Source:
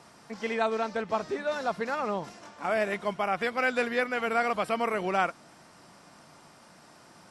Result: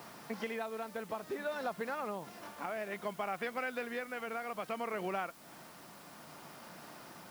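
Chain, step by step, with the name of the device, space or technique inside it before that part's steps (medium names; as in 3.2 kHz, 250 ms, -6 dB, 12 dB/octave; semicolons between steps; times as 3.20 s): medium wave at night (band-pass 110–4500 Hz; compression 6:1, threshold -38 dBFS, peak gain reduction 16 dB; tremolo 0.59 Hz, depth 34%; whistle 10 kHz -74 dBFS; white noise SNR 19 dB); trim +3.5 dB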